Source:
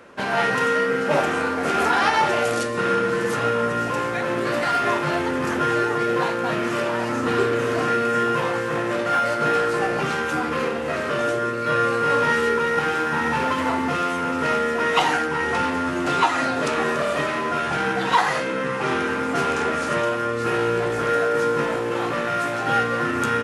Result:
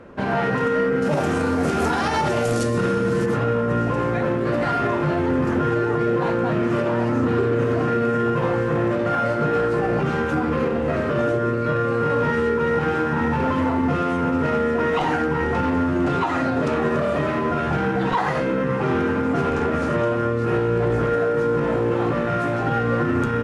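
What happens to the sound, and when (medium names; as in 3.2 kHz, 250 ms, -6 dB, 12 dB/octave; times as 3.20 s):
1.02–3.26 s: tone controls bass +3 dB, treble +14 dB
whole clip: tilt EQ -3.5 dB/octave; peak limiter -12.5 dBFS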